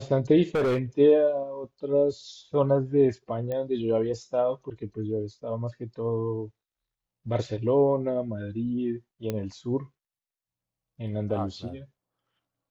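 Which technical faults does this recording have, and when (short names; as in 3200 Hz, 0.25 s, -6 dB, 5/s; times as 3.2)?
0.55–0.79 clipped -21.5 dBFS
3.52 pop -21 dBFS
9.3 pop -16 dBFS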